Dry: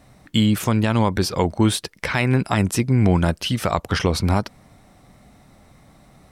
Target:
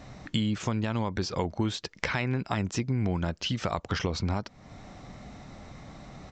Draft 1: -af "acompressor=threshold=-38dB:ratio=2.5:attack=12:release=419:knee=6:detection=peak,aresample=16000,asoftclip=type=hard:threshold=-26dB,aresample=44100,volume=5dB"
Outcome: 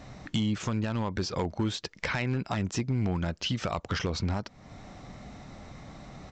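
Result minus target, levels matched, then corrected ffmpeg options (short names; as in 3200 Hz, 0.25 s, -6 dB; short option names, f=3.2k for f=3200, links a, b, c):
hard clip: distortion +25 dB
-af "acompressor=threshold=-38dB:ratio=2.5:attack=12:release=419:knee=6:detection=peak,aresample=16000,asoftclip=type=hard:threshold=-15dB,aresample=44100,volume=5dB"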